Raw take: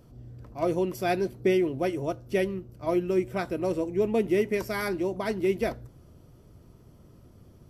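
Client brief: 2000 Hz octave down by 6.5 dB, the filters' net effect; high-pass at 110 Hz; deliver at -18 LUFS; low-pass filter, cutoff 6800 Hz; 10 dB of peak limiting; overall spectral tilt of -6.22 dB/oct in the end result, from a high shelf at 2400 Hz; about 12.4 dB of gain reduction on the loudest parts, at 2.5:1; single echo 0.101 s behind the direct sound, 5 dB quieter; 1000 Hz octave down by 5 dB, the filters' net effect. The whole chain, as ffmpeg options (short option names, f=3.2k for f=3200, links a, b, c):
-af "highpass=110,lowpass=6.8k,equalizer=f=1k:t=o:g=-7,equalizer=f=2k:t=o:g=-4,highshelf=f=2.4k:g=-4,acompressor=threshold=-40dB:ratio=2.5,alimiter=level_in=11dB:limit=-24dB:level=0:latency=1,volume=-11dB,aecho=1:1:101:0.562,volume=25dB"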